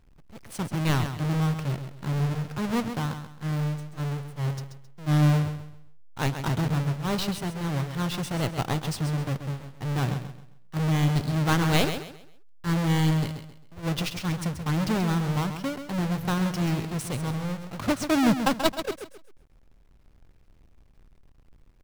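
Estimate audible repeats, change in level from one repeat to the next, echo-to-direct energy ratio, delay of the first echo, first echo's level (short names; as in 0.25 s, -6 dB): 3, -10.0 dB, -8.5 dB, 0.133 s, -9.0 dB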